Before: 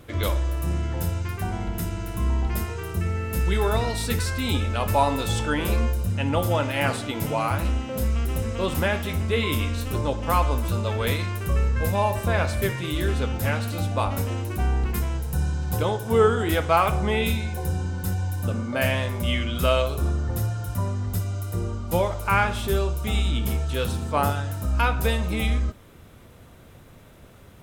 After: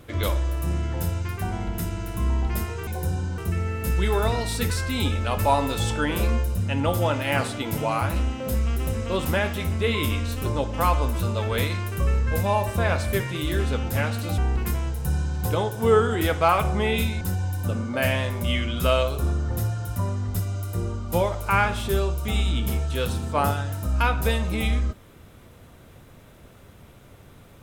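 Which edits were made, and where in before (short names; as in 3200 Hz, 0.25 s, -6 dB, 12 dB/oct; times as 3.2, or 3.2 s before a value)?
13.87–14.66 cut
17.49–18 move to 2.87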